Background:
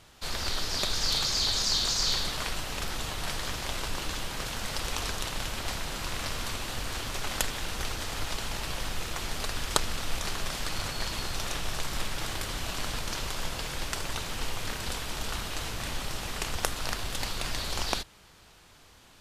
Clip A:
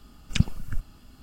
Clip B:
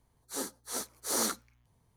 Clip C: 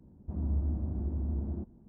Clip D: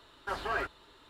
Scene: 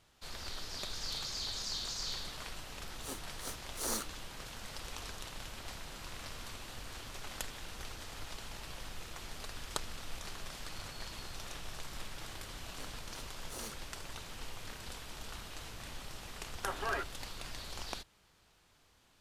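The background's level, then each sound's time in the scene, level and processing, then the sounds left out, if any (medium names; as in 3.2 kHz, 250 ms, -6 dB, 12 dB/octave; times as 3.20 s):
background -12 dB
2.71 s: add B -3.5 dB + power-law waveshaper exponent 1.4
12.42 s: add B -15 dB + local Wiener filter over 25 samples
16.37 s: add D -3.5 dB + resampled via 8 kHz
not used: A, C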